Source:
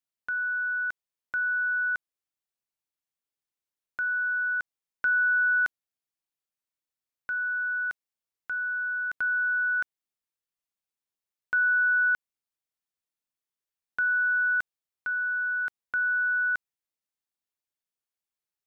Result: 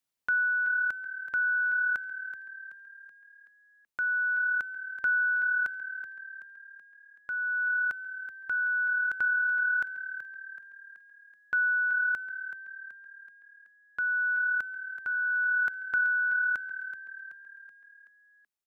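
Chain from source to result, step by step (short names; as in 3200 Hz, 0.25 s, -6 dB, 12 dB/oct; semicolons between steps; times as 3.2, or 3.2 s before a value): vocal rider 0.5 s; frequency-shifting echo 0.378 s, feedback 51%, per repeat +37 Hz, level -11.5 dB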